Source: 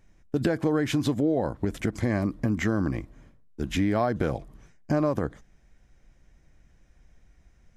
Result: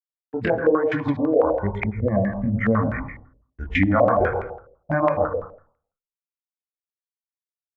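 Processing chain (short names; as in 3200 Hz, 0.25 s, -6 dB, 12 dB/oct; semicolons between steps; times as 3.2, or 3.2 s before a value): 1.69–2.64 formant sharpening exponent 1.5; gate -46 dBFS, range -7 dB; spectral noise reduction 16 dB; in parallel at -2 dB: compressor, threshold -34 dBFS, peak gain reduction 12.5 dB; on the sum: random-step tremolo; sample gate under -54 dBFS; chorus 1.1 Hz, delay 17.5 ms, depth 8 ms; on a send at -5.5 dB: reverb RT60 0.50 s, pre-delay 93 ms; on the sum: stepped low-pass 12 Hz 520–2100 Hz; gain +6 dB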